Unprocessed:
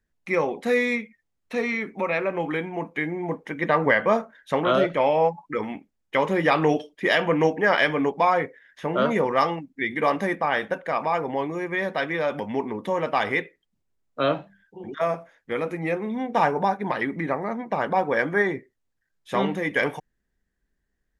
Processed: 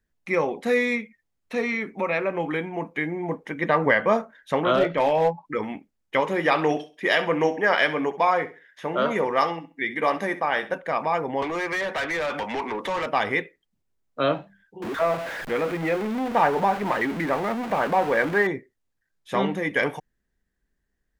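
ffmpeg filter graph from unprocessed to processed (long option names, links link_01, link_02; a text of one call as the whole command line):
ffmpeg -i in.wav -filter_complex "[0:a]asettb=1/sr,asplit=3[link_01][link_02][link_03];[link_01]atrim=end=4.754[link_04];[link_02]atrim=start=4.75:end=5.45,asetpts=PTS-STARTPTS,afade=type=in:duration=0.004:curve=qsin,afade=type=out:start_time=0.696:duration=0.004:curve=qsin,lowpass=frequency=5200:width=0.5412,lowpass=frequency=5200:width=1.3066,asoftclip=type=hard:threshold=-14dB,asplit=2[link_05][link_06];[link_06]adelay=18,volume=-10dB[link_07];[link_05][link_07]amix=inputs=2:normalize=0,atrim=end_sample=30870[link_08];[link_03]atrim=start=5.446[link_09];[link_04][link_08]acrossfade=duration=0.004:curve1=hsin:curve2=qsin[link_10];[link_10][link_09]acrossfade=duration=0.004:curve1=qsin:curve2=hsin,asettb=1/sr,asplit=3[link_11][link_12][link_13];[link_11]atrim=end=6.204[link_14];[link_12]atrim=start=6.2:end=10.73,asetpts=PTS-STARTPTS,afade=type=in:duration=0.004:curve=qsin,afade=type=out:start_time=4.526:duration=0.004:curve=qsin,lowshelf=frequency=210:gain=-9,aecho=1:1:66|132|198:0.178|0.0462|0.012,atrim=end_sample=199773[link_15];[link_13]atrim=start=10.726[link_16];[link_14][link_15]acrossfade=duration=0.004:curve1=hsin:curve2=qsin[link_17];[link_17][link_16]acrossfade=duration=0.004:curve1=qsin:curve2=hsin,asettb=1/sr,asplit=3[link_18][link_19][link_20];[link_18]atrim=end=11.424[link_21];[link_19]atrim=start=11.42:end=13.06,asetpts=PTS-STARTPTS,afade=type=in:duration=0.004:curve=qsin,afade=type=out:start_time=1.636:duration=0.004:curve=qsin,acrossover=split=300|1100[link_22][link_23][link_24];[link_22]acompressor=threshold=-46dB:ratio=4[link_25];[link_23]acompressor=threshold=-36dB:ratio=4[link_26];[link_24]acompressor=threshold=-33dB:ratio=4[link_27];[link_25][link_26][link_27]amix=inputs=3:normalize=0,asplit=2[link_28][link_29];[link_29]highpass=frequency=720:poles=1,volume=22dB,asoftclip=type=tanh:threshold=-19dB[link_30];[link_28][link_30]amix=inputs=2:normalize=0,lowpass=frequency=3200:poles=1,volume=-6dB[link_31];[link_20]atrim=start=13.056[link_32];[link_21][link_31]acrossfade=duration=0.004:curve1=hsin:curve2=qsin[link_33];[link_33][link_32]acrossfade=duration=0.004:curve1=qsin:curve2=hsin,asettb=1/sr,asplit=3[link_34][link_35][link_36];[link_34]atrim=end=14.824[link_37];[link_35]atrim=start=14.82:end=18.47,asetpts=PTS-STARTPTS,afade=type=in:duration=0.004:curve=qsin,afade=type=out:start_time=3.646:duration=0.004:curve=qsin,aeval=exprs='val(0)+0.5*0.0531*sgn(val(0))':channel_layout=same,lowshelf=frequency=190:gain=-7.5,acrossover=split=3100[link_38][link_39];[link_39]acompressor=threshold=-47dB:ratio=4:attack=1:release=60[link_40];[link_38][link_40]amix=inputs=2:normalize=0[link_41];[link_36]atrim=start=18.466[link_42];[link_37][link_41]acrossfade=duration=0.004:curve1=hsin:curve2=qsin[link_43];[link_43][link_42]acrossfade=duration=0.004:curve1=qsin:curve2=hsin" out.wav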